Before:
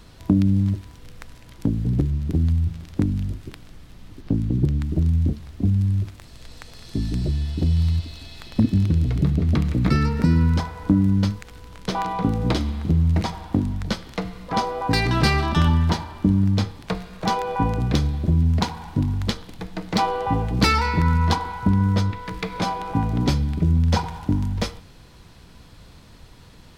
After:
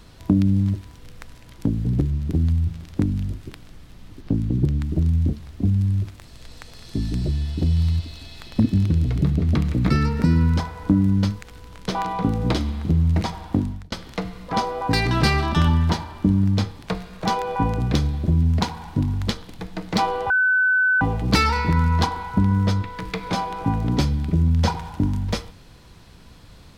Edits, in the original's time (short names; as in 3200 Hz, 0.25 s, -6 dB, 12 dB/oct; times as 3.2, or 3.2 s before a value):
13.61–13.92 fade out
20.3 add tone 1510 Hz -15 dBFS 0.71 s